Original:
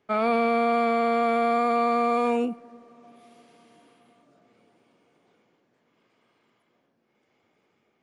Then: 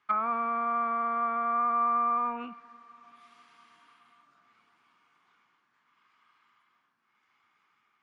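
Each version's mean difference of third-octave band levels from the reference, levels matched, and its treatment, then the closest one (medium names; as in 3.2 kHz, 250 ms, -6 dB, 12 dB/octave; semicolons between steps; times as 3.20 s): 6.5 dB: resonant low shelf 790 Hz -13 dB, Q 3; low-pass that closes with the level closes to 950 Hz, closed at -23 dBFS; distance through air 57 m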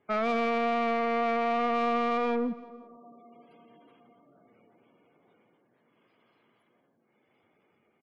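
3.0 dB: spectral gate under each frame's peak -20 dB strong; saturation -23 dBFS, distortion -11 dB; on a send: feedback delay 170 ms, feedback 42%, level -18 dB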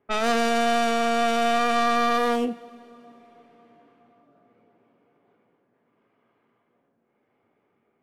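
4.5 dB: tracing distortion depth 0.3 ms; level-controlled noise filter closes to 1.8 kHz, open at -23.5 dBFS; two-slope reverb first 0.31 s, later 3.3 s, from -20 dB, DRR 11 dB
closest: second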